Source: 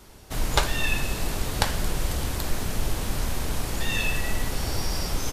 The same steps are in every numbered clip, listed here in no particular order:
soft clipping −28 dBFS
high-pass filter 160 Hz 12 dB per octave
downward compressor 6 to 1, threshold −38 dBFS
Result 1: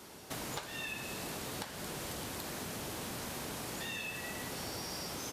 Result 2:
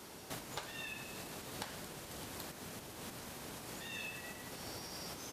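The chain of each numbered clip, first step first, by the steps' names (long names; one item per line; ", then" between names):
high-pass filter, then downward compressor, then soft clipping
downward compressor, then high-pass filter, then soft clipping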